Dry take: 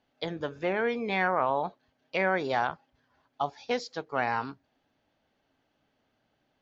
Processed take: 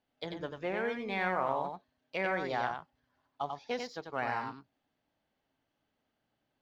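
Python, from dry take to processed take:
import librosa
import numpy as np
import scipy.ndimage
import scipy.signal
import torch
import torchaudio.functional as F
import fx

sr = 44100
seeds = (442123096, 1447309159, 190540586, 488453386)

p1 = np.sign(x) * np.maximum(np.abs(x) - 10.0 ** (-43.5 / 20.0), 0.0)
p2 = x + F.gain(torch.from_numpy(p1), -10.0).numpy()
p3 = fx.echo_multitap(p2, sr, ms=(91, 92), db=(-18.0, -5.0))
y = F.gain(torch.from_numpy(p3), -8.5).numpy()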